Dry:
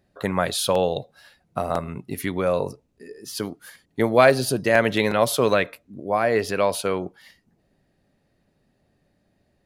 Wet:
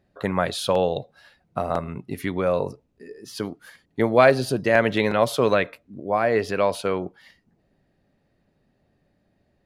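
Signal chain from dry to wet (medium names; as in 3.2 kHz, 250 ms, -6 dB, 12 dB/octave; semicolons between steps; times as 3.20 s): treble shelf 6.5 kHz -11.5 dB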